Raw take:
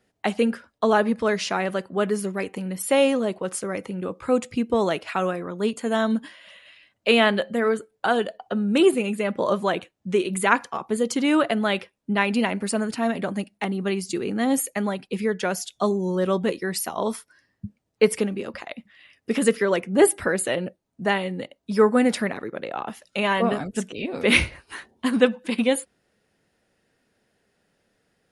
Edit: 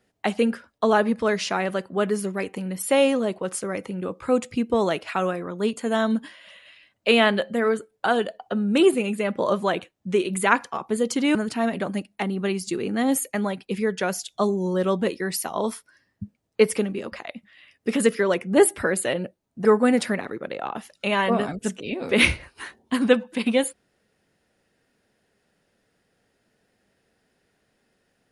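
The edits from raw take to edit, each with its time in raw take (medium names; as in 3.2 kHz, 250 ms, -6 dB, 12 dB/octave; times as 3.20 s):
11.35–12.77 s: delete
21.07–21.77 s: delete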